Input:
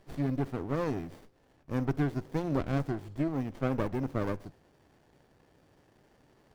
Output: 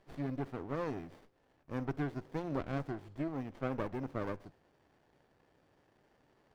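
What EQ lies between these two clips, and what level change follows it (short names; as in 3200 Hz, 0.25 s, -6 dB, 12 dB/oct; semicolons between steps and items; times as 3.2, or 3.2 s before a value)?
low shelf 370 Hz -6 dB; high shelf 5400 Hz -10 dB; -3.0 dB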